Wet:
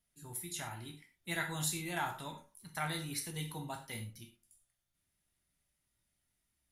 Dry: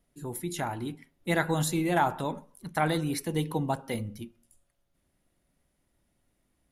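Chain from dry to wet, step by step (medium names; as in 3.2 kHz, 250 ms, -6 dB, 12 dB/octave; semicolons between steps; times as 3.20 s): amplifier tone stack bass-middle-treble 5-5-5; gated-style reverb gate 140 ms falling, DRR 2 dB; trim +2 dB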